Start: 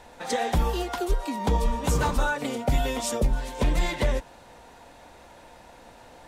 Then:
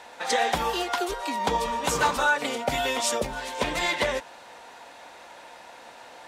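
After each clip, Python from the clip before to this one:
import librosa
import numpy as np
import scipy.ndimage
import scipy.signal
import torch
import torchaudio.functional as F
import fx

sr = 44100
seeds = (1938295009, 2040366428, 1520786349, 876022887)

y = fx.highpass(x, sr, hz=1000.0, slope=6)
y = fx.high_shelf(y, sr, hz=7700.0, db=-9.0)
y = y * 10.0 ** (8.0 / 20.0)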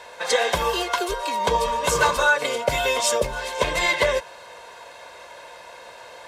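y = x + 0.66 * np.pad(x, (int(1.9 * sr / 1000.0), 0))[:len(x)]
y = y * 10.0 ** (2.5 / 20.0)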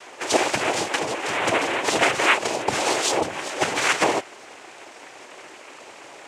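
y = fx.noise_vocoder(x, sr, seeds[0], bands=4)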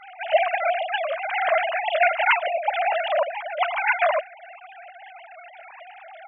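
y = fx.sine_speech(x, sr)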